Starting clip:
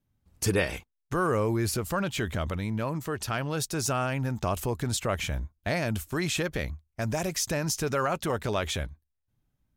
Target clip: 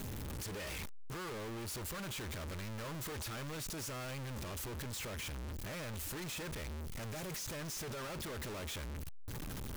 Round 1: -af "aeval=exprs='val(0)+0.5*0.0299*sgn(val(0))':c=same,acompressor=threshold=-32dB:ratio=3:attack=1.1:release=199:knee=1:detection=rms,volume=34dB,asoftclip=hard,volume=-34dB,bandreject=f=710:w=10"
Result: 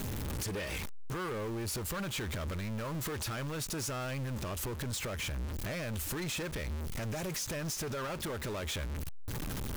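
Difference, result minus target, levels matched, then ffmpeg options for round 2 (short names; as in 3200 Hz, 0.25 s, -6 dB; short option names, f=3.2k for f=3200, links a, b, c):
overloaded stage: distortion -5 dB
-af "aeval=exprs='val(0)+0.5*0.0299*sgn(val(0))':c=same,acompressor=threshold=-32dB:ratio=3:attack=1.1:release=199:knee=1:detection=rms,volume=42dB,asoftclip=hard,volume=-42dB,bandreject=f=710:w=10"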